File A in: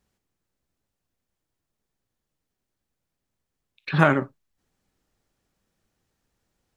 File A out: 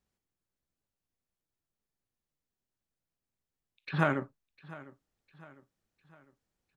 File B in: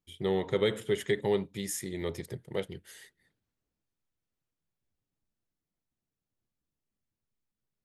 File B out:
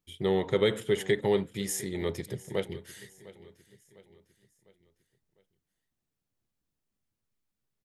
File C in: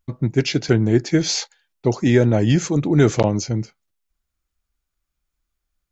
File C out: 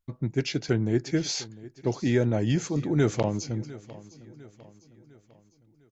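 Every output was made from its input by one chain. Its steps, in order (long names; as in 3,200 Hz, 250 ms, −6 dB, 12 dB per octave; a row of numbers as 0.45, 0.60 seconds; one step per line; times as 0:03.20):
repeating echo 703 ms, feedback 46%, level −19 dB
normalise the peak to −12 dBFS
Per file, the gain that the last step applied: −9.5, +2.5, −8.5 decibels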